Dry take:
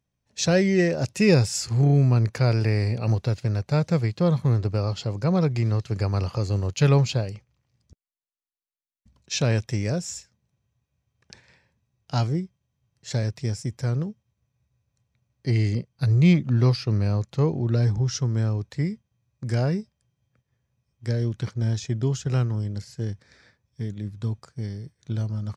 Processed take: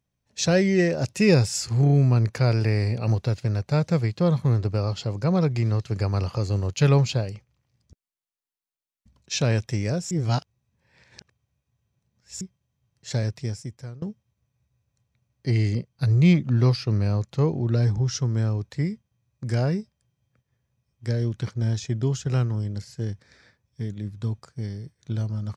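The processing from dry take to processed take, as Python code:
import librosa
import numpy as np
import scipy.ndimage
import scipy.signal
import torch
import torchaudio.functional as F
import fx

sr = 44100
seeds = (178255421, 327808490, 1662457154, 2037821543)

y = fx.edit(x, sr, fx.reverse_span(start_s=10.11, length_s=2.3),
    fx.fade_out_to(start_s=13.29, length_s=0.73, floor_db=-22.5), tone=tone)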